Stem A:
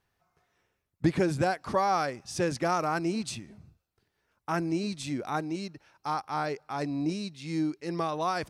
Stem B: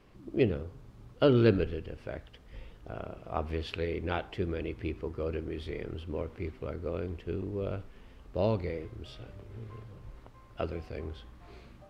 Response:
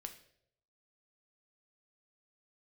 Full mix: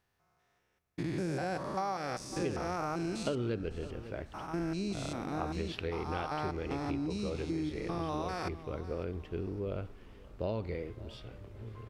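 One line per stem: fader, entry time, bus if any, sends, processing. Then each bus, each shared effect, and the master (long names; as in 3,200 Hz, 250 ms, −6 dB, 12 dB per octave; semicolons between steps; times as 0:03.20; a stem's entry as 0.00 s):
−2.5 dB, 0.00 s, send −5 dB, echo send −15 dB, spectrum averaged block by block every 200 ms
−1.5 dB, 2.05 s, no send, echo send −24 dB, no processing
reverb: on, RT60 0.70 s, pre-delay 4 ms
echo: repeating echo 553 ms, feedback 33%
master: downward compressor 6 to 1, threshold −31 dBFS, peak gain reduction 11.5 dB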